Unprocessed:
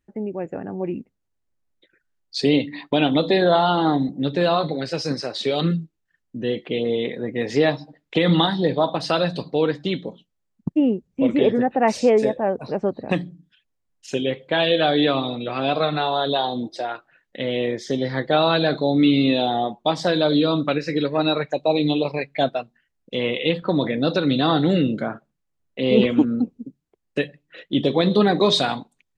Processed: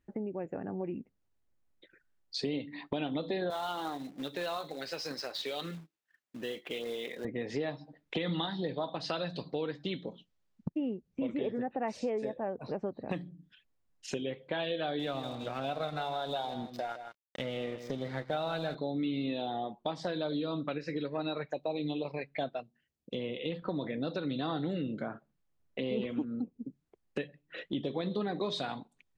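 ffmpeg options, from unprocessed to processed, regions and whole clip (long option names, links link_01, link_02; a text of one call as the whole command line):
ffmpeg -i in.wav -filter_complex "[0:a]asettb=1/sr,asplit=3[link_01][link_02][link_03];[link_01]atrim=end=3.504[link_04];[link_02]atrim=start=3.5:end=7.25,asetpts=PTS-STARTPTS,afade=type=in:duration=0.004:curve=qsin,afade=type=out:start_time=3.746:duration=0.004:curve=qsin,highpass=frequency=1000:poles=1,acrusher=bits=3:mode=log:mix=0:aa=0.000001[link_05];[link_03]atrim=start=7.246[link_06];[link_04][link_05]acrossfade=duration=0.004:curve1=hsin:curve2=qsin[link_07];[link_07][link_06]acrossfade=duration=0.004:curve1=qsin:curve2=hsin,asettb=1/sr,asplit=3[link_08][link_09][link_10];[link_08]atrim=end=8.174[link_11];[link_09]atrim=start=8.17:end=11.34,asetpts=PTS-STARTPTS,afade=type=in:duration=0.004:curve=qsin,afade=type=out:start_time=3.166:duration=0.004:curve=qsin,lowpass=5800,highshelf=frequency=3100:gain=8.5[link_12];[link_10]atrim=start=11.336[link_13];[link_11][link_12]acrossfade=duration=0.004:curve1=hsin:curve2=qsin[link_14];[link_14][link_13]acrossfade=duration=0.004:curve1=qsin:curve2=hsin,asettb=1/sr,asplit=3[link_15][link_16][link_17];[link_15]atrim=end=14.994[link_18];[link_16]atrim=start=14.99:end=18.75,asetpts=PTS-STARTPTS,afade=type=in:duration=0.004:curve=qsin,afade=type=out:start_time=3.756:duration=0.004:curve=qsin,aecho=1:1:1.4:0.34,atrim=end_sample=165816,aeval=exprs='sgn(val(0))*max(abs(val(0))-0.0133,0)':channel_layout=same,aecho=1:1:159:0.224,atrim=end_sample=165816[link_19];[link_17]atrim=start=18.746[link_20];[link_18][link_19]acrossfade=duration=0.004:curve1=hsin:curve2=qsin[link_21];[link_21][link_20]acrossfade=duration=0.004:curve1=qsin:curve2=hsin,asettb=1/sr,asplit=3[link_22][link_23][link_24];[link_22]atrim=end=22.604[link_25];[link_23]atrim=start=22.6:end=23.52,asetpts=PTS-STARTPTS,afade=type=in:duration=0.004:curve=qsin,afade=type=out:start_time=0.916:duration=0.004:curve=qsin,highpass=61,equalizer=frequency=1400:width_type=o:width=1.8:gain=-11.5[link_26];[link_24]atrim=start=23.516[link_27];[link_25][link_26]acrossfade=duration=0.004:curve1=hsin:curve2=qsin[link_28];[link_28][link_27]acrossfade=duration=0.004:curve1=qsin:curve2=hsin,highshelf=frequency=4900:gain=-7,acompressor=threshold=-37dB:ratio=3" out.wav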